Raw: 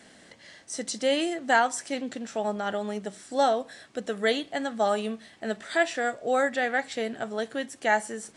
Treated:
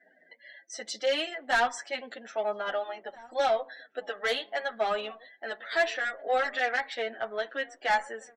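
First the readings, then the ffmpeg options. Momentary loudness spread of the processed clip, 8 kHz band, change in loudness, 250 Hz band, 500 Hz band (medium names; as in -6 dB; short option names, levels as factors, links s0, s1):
13 LU, -7.5 dB, -2.5 dB, -14.5 dB, -3.0 dB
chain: -filter_complex "[0:a]lowpass=4600,afftdn=nr=35:nf=-49,highpass=650,asoftclip=type=tanh:threshold=0.075,asplit=2[s0][s1];[s1]adelay=1633,volume=0.0891,highshelf=f=4000:g=-36.7[s2];[s0][s2]amix=inputs=2:normalize=0,asplit=2[s3][s4];[s4]adelay=7.5,afreqshift=-0.79[s5];[s3][s5]amix=inputs=2:normalize=1,volume=1.88"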